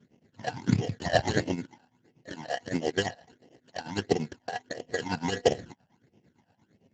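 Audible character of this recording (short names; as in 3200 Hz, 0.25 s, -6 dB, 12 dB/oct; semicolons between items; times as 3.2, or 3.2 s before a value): aliases and images of a low sample rate 1200 Hz, jitter 0%; tremolo triangle 8.8 Hz, depth 85%; phasing stages 12, 1.5 Hz, lowest notch 360–1400 Hz; Speex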